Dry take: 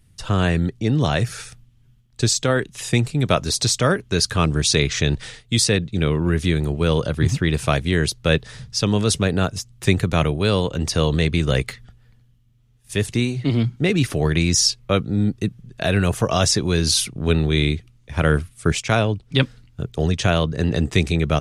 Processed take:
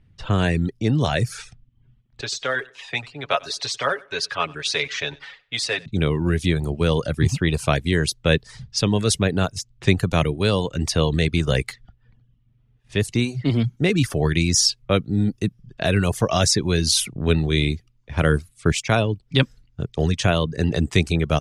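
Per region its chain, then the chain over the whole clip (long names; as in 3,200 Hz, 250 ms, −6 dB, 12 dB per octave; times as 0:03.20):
0:02.21–0:05.86: three-way crossover with the lows and the highs turned down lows −22 dB, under 530 Hz, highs −13 dB, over 4,000 Hz + comb filter 7.2 ms, depth 59% + repeating echo 94 ms, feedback 28%, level −12 dB
whole clip: reverb reduction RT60 0.51 s; low-pass that shuts in the quiet parts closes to 2,500 Hz, open at −19.5 dBFS; parametric band 1,300 Hz −2 dB 0.29 octaves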